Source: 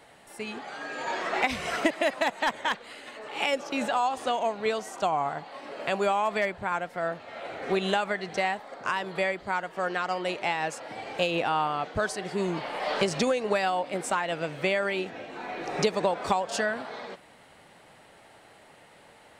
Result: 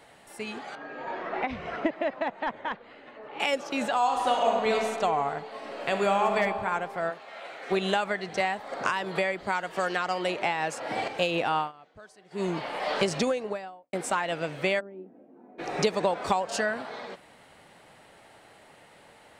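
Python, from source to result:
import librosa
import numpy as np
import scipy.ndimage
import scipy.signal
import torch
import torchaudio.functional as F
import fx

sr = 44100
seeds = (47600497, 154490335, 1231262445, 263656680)

y = fx.spacing_loss(x, sr, db_at_10k=36, at=(0.75, 3.4))
y = fx.reverb_throw(y, sr, start_s=3.97, length_s=0.79, rt60_s=2.2, drr_db=-0.5)
y = fx.reverb_throw(y, sr, start_s=5.51, length_s=0.86, rt60_s=2.4, drr_db=3.5)
y = fx.highpass(y, sr, hz=fx.line((7.09, 560.0), (7.7, 1200.0)), slope=6, at=(7.09, 7.7), fade=0.02)
y = fx.band_squash(y, sr, depth_pct=100, at=(8.4, 11.08))
y = fx.studio_fade_out(y, sr, start_s=13.1, length_s=0.83)
y = fx.ladder_bandpass(y, sr, hz=280.0, resonance_pct=45, at=(14.79, 15.58), fade=0.02)
y = fx.notch(y, sr, hz=3400.0, q=12.0, at=(16.36, 16.79))
y = fx.edit(y, sr, fx.fade_down_up(start_s=11.58, length_s=0.86, db=-21.5, fade_s=0.14), tone=tone)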